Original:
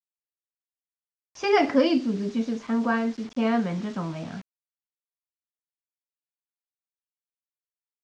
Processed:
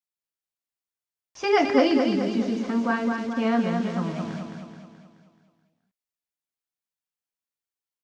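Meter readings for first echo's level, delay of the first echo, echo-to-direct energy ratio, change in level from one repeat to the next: -5.0 dB, 0.214 s, -3.5 dB, -5.5 dB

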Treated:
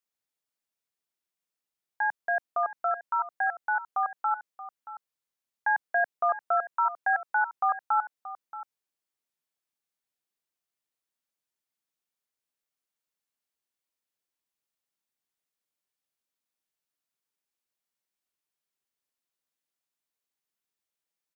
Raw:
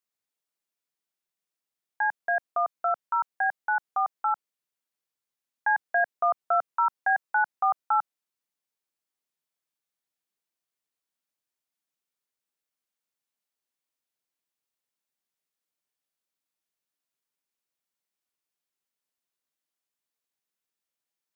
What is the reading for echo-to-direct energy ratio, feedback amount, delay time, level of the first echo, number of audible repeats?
-14.5 dB, no steady repeat, 0.628 s, -14.5 dB, 1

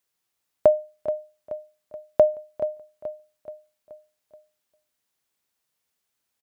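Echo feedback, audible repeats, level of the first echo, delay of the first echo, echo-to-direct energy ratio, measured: 50%, 4, -12.0 dB, 0.428 s, -11.0 dB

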